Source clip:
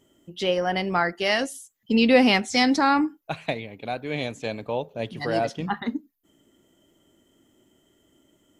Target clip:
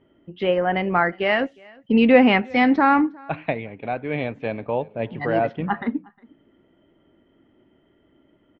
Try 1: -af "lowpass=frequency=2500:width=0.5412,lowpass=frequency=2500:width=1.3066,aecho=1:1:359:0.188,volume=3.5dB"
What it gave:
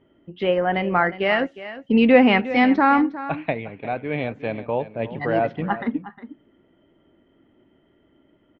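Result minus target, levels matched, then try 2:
echo-to-direct +11.5 dB
-af "lowpass=frequency=2500:width=0.5412,lowpass=frequency=2500:width=1.3066,aecho=1:1:359:0.0501,volume=3.5dB"

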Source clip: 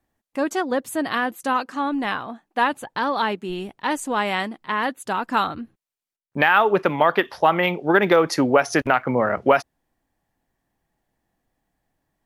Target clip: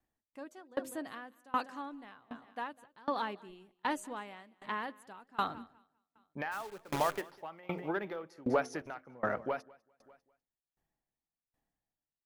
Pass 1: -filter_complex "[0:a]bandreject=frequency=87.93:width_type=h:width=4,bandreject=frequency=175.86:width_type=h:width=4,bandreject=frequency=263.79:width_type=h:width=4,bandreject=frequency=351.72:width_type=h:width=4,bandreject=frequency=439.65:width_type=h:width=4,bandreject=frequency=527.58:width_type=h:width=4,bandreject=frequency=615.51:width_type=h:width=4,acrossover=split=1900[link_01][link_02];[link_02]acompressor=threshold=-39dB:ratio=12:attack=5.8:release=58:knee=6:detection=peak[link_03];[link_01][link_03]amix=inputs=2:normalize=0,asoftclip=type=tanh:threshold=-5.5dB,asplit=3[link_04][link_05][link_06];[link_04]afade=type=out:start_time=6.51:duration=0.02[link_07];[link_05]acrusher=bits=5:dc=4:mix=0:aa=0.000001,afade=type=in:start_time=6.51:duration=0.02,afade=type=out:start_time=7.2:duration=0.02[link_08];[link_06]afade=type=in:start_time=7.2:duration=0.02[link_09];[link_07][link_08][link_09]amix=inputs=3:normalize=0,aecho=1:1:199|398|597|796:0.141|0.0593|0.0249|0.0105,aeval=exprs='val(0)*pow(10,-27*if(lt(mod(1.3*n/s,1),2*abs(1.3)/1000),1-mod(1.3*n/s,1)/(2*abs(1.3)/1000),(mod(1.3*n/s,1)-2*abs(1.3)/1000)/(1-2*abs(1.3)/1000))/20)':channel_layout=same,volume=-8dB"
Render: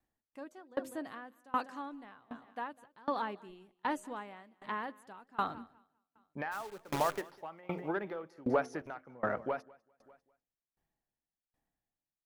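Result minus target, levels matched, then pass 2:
downward compressor: peak gain reduction +8 dB
-filter_complex "[0:a]bandreject=frequency=87.93:width_type=h:width=4,bandreject=frequency=175.86:width_type=h:width=4,bandreject=frequency=263.79:width_type=h:width=4,bandreject=frequency=351.72:width_type=h:width=4,bandreject=frequency=439.65:width_type=h:width=4,bandreject=frequency=527.58:width_type=h:width=4,bandreject=frequency=615.51:width_type=h:width=4,acrossover=split=1900[link_01][link_02];[link_02]acompressor=threshold=-30dB:ratio=12:attack=5.8:release=58:knee=6:detection=peak[link_03];[link_01][link_03]amix=inputs=2:normalize=0,asoftclip=type=tanh:threshold=-5.5dB,asplit=3[link_04][link_05][link_06];[link_04]afade=type=out:start_time=6.51:duration=0.02[link_07];[link_05]acrusher=bits=5:dc=4:mix=0:aa=0.000001,afade=type=in:start_time=6.51:duration=0.02,afade=type=out:start_time=7.2:duration=0.02[link_08];[link_06]afade=type=in:start_time=7.2:duration=0.02[link_09];[link_07][link_08][link_09]amix=inputs=3:normalize=0,aecho=1:1:199|398|597|796:0.141|0.0593|0.0249|0.0105,aeval=exprs='val(0)*pow(10,-27*if(lt(mod(1.3*n/s,1),2*abs(1.3)/1000),1-mod(1.3*n/s,1)/(2*abs(1.3)/1000),(mod(1.3*n/s,1)-2*abs(1.3)/1000)/(1-2*abs(1.3)/1000))/20)':channel_layout=same,volume=-8dB"

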